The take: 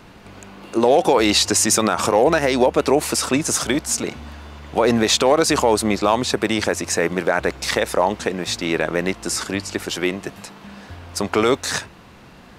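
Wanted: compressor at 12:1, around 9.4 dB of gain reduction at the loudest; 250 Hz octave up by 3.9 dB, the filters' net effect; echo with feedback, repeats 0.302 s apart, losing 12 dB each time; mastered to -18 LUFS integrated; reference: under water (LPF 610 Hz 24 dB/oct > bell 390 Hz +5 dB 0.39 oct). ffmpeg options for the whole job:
-af "equalizer=f=250:t=o:g=3.5,acompressor=threshold=-19dB:ratio=12,lowpass=f=610:w=0.5412,lowpass=f=610:w=1.3066,equalizer=f=390:t=o:w=0.39:g=5,aecho=1:1:302|604|906:0.251|0.0628|0.0157,volume=7.5dB"

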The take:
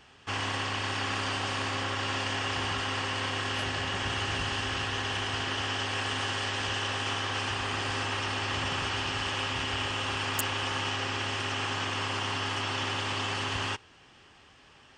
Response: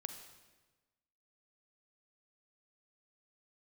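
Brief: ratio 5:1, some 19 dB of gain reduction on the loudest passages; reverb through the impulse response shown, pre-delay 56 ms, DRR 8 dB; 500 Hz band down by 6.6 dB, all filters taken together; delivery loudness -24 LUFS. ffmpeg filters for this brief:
-filter_complex "[0:a]equalizer=f=500:t=o:g=-9,acompressor=threshold=-47dB:ratio=5,asplit=2[a][b];[1:a]atrim=start_sample=2205,adelay=56[c];[b][c]afir=irnorm=-1:irlink=0,volume=-5.5dB[d];[a][d]amix=inputs=2:normalize=0,volume=22dB"

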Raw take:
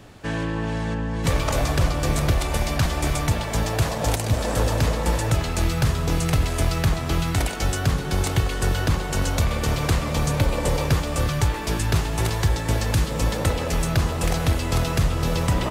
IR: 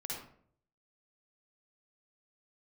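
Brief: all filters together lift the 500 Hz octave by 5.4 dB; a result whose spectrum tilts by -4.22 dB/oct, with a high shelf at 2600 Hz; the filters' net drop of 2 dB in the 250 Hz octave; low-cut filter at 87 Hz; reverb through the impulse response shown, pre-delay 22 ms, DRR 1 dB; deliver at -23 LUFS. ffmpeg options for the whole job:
-filter_complex "[0:a]highpass=87,equalizer=f=250:t=o:g=-5.5,equalizer=f=500:t=o:g=7.5,highshelf=f=2.6k:g=5,asplit=2[a][b];[1:a]atrim=start_sample=2205,adelay=22[c];[b][c]afir=irnorm=-1:irlink=0,volume=-1dB[d];[a][d]amix=inputs=2:normalize=0,volume=-3dB"

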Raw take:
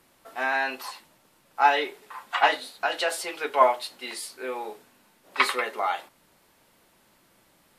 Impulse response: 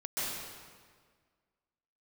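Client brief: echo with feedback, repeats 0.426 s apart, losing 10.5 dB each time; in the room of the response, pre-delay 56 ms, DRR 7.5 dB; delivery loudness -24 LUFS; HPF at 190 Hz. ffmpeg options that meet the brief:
-filter_complex "[0:a]highpass=190,aecho=1:1:426|852|1278:0.299|0.0896|0.0269,asplit=2[a][b];[1:a]atrim=start_sample=2205,adelay=56[c];[b][c]afir=irnorm=-1:irlink=0,volume=-13dB[d];[a][d]amix=inputs=2:normalize=0,volume=2dB"

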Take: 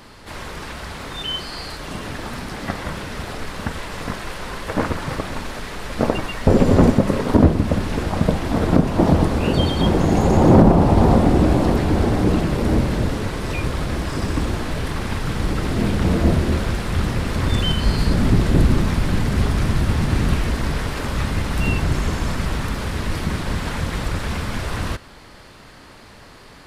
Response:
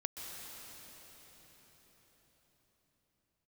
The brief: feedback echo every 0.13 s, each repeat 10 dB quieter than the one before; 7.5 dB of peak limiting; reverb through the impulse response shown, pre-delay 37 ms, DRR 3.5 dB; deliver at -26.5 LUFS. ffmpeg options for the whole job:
-filter_complex "[0:a]alimiter=limit=-12dB:level=0:latency=1,aecho=1:1:130|260|390|520:0.316|0.101|0.0324|0.0104,asplit=2[a][b];[1:a]atrim=start_sample=2205,adelay=37[c];[b][c]afir=irnorm=-1:irlink=0,volume=-4dB[d];[a][d]amix=inputs=2:normalize=0,volume=-5dB"

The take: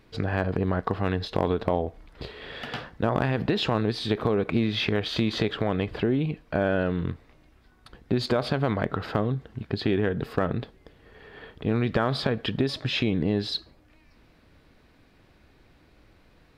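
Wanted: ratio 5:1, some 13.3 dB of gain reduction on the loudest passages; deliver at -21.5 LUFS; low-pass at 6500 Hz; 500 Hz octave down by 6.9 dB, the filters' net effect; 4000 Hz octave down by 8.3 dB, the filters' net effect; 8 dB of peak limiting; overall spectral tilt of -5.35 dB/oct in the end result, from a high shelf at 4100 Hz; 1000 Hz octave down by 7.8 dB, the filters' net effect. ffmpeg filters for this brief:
-af "lowpass=6.5k,equalizer=f=500:t=o:g=-7,equalizer=f=1k:t=o:g=-7.5,equalizer=f=4k:t=o:g=-6.5,highshelf=f=4.1k:g=-5,acompressor=threshold=-39dB:ratio=5,volume=24dB,alimiter=limit=-10.5dB:level=0:latency=1"

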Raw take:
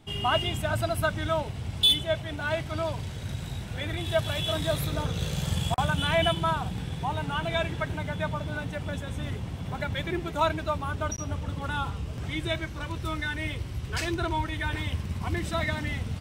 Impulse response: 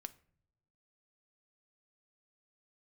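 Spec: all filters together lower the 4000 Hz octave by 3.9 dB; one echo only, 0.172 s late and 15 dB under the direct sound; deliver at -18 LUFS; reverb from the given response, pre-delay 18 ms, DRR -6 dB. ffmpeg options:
-filter_complex "[0:a]equalizer=f=4k:t=o:g=-5,aecho=1:1:172:0.178,asplit=2[a][b];[1:a]atrim=start_sample=2205,adelay=18[c];[b][c]afir=irnorm=-1:irlink=0,volume=10.5dB[d];[a][d]amix=inputs=2:normalize=0,volume=5.5dB"

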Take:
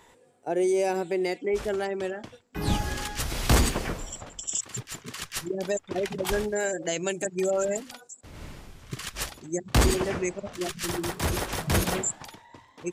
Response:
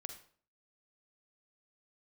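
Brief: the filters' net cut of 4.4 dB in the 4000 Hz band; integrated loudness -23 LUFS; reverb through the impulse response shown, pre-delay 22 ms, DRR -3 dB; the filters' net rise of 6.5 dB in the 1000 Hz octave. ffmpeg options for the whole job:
-filter_complex "[0:a]equalizer=f=1k:t=o:g=9,equalizer=f=4k:t=o:g=-6.5,asplit=2[a][b];[1:a]atrim=start_sample=2205,adelay=22[c];[b][c]afir=irnorm=-1:irlink=0,volume=6.5dB[d];[a][d]amix=inputs=2:normalize=0,volume=-0.5dB"

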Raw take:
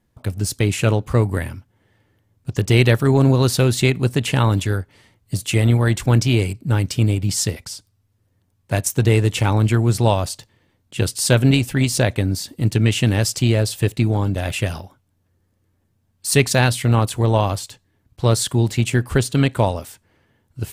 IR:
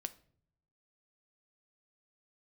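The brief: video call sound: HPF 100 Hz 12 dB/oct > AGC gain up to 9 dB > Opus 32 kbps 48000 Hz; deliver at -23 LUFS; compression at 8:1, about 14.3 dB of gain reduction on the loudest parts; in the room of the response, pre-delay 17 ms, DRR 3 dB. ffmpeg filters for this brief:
-filter_complex "[0:a]acompressor=threshold=-26dB:ratio=8,asplit=2[a][b];[1:a]atrim=start_sample=2205,adelay=17[c];[b][c]afir=irnorm=-1:irlink=0,volume=-0.5dB[d];[a][d]amix=inputs=2:normalize=0,highpass=100,dynaudnorm=m=9dB,volume=3dB" -ar 48000 -c:a libopus -b:a 32k

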